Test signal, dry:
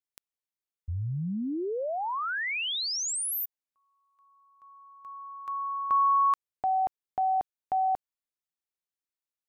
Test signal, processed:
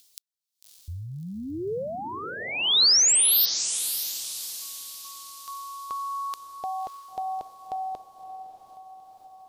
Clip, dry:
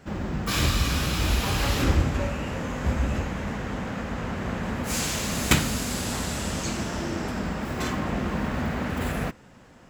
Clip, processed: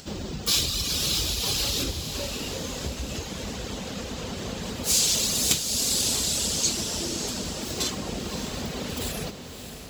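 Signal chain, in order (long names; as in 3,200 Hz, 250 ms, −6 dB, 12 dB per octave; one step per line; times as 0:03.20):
reverb reduction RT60 0.85 s
downward compressor 6 to 1, threshold −27 dBFS
high shelf with overshoot 2,700 Hz +13.5 dB, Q 1.5
on a send: feedback delay with all-pass diffusion 605 ms, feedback 46%, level −9 dB
on the sum: upward compression, threshold −39 dBFS
dynamic equaliser 440 Hz, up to +6 dB, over −52 dBFS, Q 1.9
level −2.5 dB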